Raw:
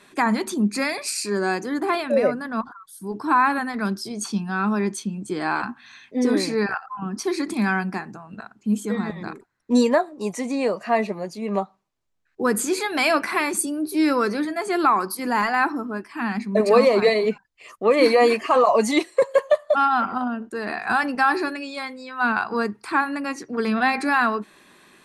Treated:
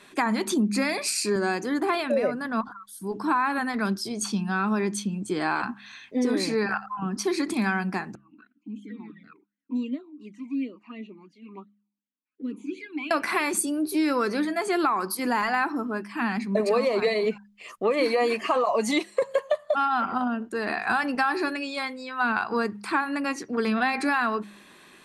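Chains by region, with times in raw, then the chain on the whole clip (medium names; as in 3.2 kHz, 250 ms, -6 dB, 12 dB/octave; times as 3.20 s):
0.50–1.36 s: high-pass 170 Hz + bass shelf 310 Hz +9.5 dB + tape noise reduction on one side only encoder only
8.15–13.11 s: touch-sensitive flanger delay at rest 4.9 ms, full sweep at -19.5 dBFS + talking filter i-u 2.8 Hz
whole clip: peaking EQ 3 kHz +2.5 dB; de-hum 68.18 Hz, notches 3; compression 4:1, threshold -21 dBFS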